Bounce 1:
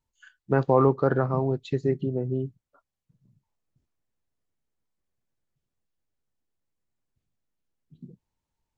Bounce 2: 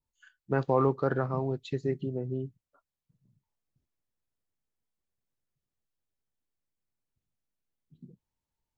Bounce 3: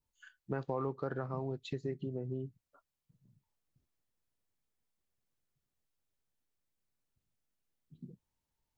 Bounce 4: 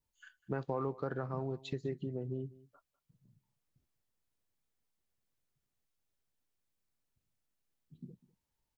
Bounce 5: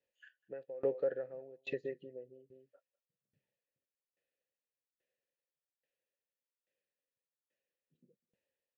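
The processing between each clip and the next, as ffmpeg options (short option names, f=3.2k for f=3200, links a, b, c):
-af "adynamicequalizer=threshold=0.0178:dfrequency=1600:dqfactor=0.7:tfrequency=1600:tqfactor=0.7:attack=5:release=100:ratio=0.375:range=2.5:mode=boostabove:tftype=highshelf,volume=-5.5dB"
-af "acompressor=threshold=-39dB:ratio=2.5,volume=1dB"
-af "aecho=1:1:199:0.0944"
-filter_complex "[0:a]asplit=3[a][b][c];[a]bandpass=f=530:t=q:w=8,volume=0dB[d];[b]bandpass=f=1.84k:t=q:w=8,volume=-6dB[e];[c]bandpass=f=2.48k:t=q:w=8,volume=-9dB[f];[d][e][f]amix=inputs=3:normalize=0,aeval=exprs='val(0)*pow(10,-24*if(lt(mod(1.2*n/s,1),2*abs(1.2)/1000),1-mod(1.2*n/s,1)/(2*abs(1.2)/1000),(mod(1.2*n/s,1)-2*abs(1.2)/1000)/(1-2*abs(1.2)/1000))/20)':c=same,volume=17dB"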